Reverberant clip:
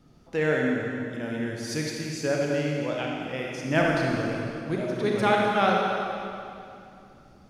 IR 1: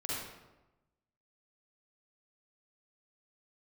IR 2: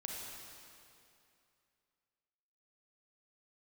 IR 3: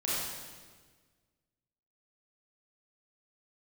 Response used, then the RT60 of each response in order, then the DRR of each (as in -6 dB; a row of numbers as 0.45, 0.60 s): 2; 1.0, 2.6, 1.5 s; -7.5, -2.0, -8.5 dB